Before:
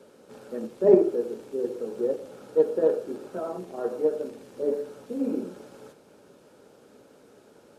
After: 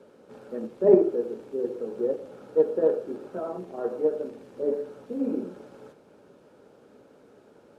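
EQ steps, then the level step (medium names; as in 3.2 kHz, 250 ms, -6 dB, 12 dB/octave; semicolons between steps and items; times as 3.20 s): treble shelf 3.8 kHz -11 dB; 0.0 dB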